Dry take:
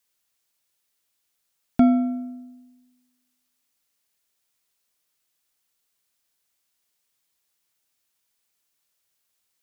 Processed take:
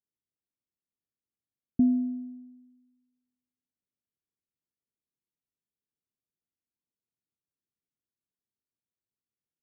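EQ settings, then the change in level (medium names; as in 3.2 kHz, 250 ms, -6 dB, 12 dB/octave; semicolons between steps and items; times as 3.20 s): Gaussian low-pass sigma 23 samples; high-pass 110 Hz 6 dB/octave; -2.0 dB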